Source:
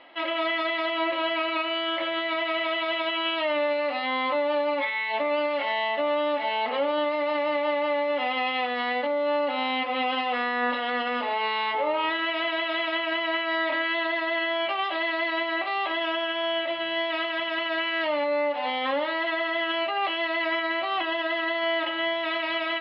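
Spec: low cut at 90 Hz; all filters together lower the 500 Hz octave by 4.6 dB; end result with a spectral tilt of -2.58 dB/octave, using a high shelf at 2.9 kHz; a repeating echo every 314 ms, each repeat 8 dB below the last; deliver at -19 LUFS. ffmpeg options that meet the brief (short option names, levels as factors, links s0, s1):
-af "highpass=90,equalizer=f=500:t=o:g=-6,highshelf=f=2900:g=-4.5,aecho=1:1:314|628|942|1256|1570:0.398|0.159|0.0637|0.0255|0.0102,volume=2.82"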